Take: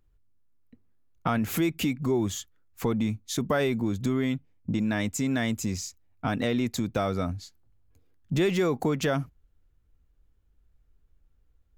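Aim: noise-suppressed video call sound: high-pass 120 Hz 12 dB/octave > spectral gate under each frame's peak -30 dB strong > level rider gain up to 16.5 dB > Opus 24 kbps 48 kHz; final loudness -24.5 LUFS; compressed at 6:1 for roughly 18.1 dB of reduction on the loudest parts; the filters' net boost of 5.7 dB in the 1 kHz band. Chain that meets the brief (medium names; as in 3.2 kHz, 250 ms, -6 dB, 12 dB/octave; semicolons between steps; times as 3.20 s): peaking EQ 1 kHz +8 dB; compression 6:1, threshold -38 dBFS; high-pass 120 Hz 12 dB/octave; spectral gate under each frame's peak -30 dB strong; level rider gain up to 16.5 dB; trim +17.5 dB; Opus 24 kbps 48 kHz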